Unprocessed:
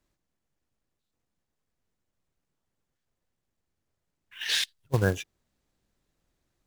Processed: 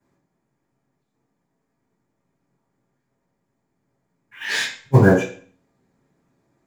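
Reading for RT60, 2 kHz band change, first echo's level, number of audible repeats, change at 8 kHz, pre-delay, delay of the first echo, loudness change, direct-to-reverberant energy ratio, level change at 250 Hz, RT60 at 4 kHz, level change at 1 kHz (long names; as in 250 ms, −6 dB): 0.45 s, +9.5 dB, no echo audible, no echo audible, +2.5 dB, 3 ms, no echo audible, +10.5 dB, −13.0 dB, +15.5 dB, 0.40 s, +13.0 dB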